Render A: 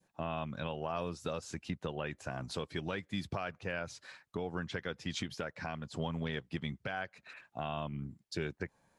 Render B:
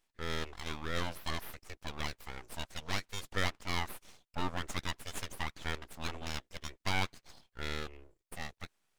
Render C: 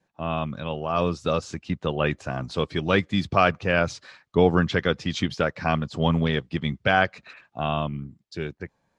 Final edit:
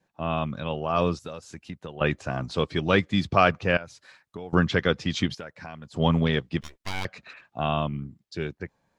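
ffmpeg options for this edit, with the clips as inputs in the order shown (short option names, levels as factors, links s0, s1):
-filter_complex "[0:a]asplit=3[s0][s1][s2];[2:a]asplit=5[s3][s4][s5][s6][s7];[s3]atrim=end=1.192[s8];[s0]atrim=start=1.188:end=2.012[s9];[s4]atrim=start=2.008:end=3.772[s10];[s1]atrim=start=3.768:end=4.532[s11];[s5]atrim=start=4.528:end=5.352[s12];[s2]atrim=start=5.348:end=5.962[s13];[s6]atrim=start=5.958:end=6.612[s14];[1:a]atrim=start=6.608:end=7.052[s15];[s7]atrim=start=7.048[s16];[s8][s9]acrossfade=d=0.004:c1=hsin:c2=hsin[s17];[s17][s10]acrossfade=d=0.004:c1=hsin:c2=hsin[s18];[s18][s11]acrossfade=d=0.004:c1=hsin:c2=hsin[s19];[s19][s12]acrossfade=d=0.004:c1=hsin:c2=hsin[s20];[s20][s13]acrossfade=d=0.004:c1=hsin:c2=hsin[s21];[s21][s14]acrossfade=d=0.004:c1=hsin:c2=hsin[s22];[s22][s15]acrossfade=d=0.004:c1=hsin:c2=hsin[s23];[s23][s16]acrossfade=d=0.004:c1=hsin:c2=hsin"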